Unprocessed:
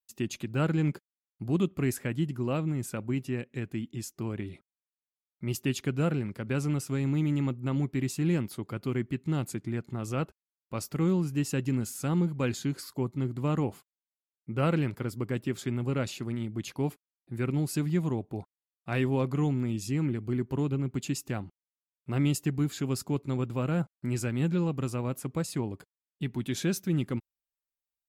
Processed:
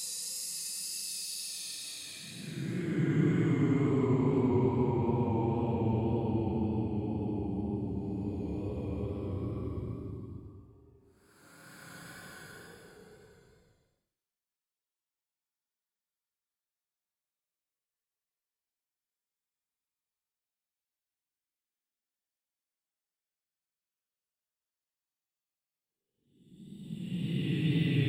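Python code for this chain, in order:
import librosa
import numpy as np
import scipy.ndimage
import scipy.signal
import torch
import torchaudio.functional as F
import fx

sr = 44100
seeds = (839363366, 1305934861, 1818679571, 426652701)

y = fx.paulstretch(x, sr, seeds[0], factor=37.0, window_s=0.05, from_s=25.48)
y = fx.wow_flutter(y, sr, seeds[1], rate_hz=2.1, depth_cents=26.0)
y = y * librosa.db_to_amplitude(1.0)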